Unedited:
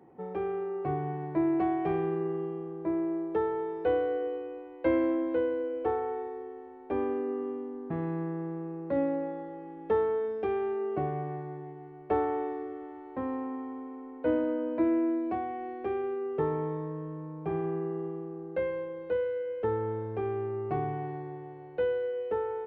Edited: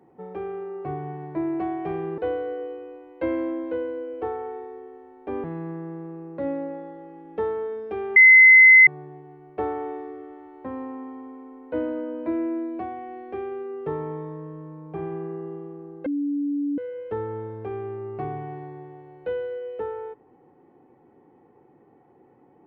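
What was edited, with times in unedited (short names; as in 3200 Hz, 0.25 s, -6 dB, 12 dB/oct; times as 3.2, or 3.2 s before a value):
2.18–3.81 cut
7.07–7.96 cut
10.68–11.39 bleep 2050 Hz -7.5 dBFS
18.58–19.3 bleep 287 Hz -22.5 dBFS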